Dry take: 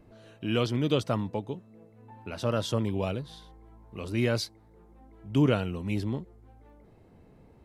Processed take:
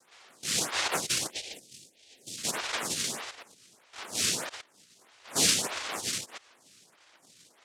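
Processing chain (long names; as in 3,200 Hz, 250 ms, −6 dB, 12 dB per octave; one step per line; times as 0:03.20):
delay that plays each chunk backwards 118 ms, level −6.5 dB
cochlear-implant simulation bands 1
0:01.30–0:02.38: Butterworth band-reject 1,200 Hz, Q 0.57
phaser with staggered stages 1.6 Hz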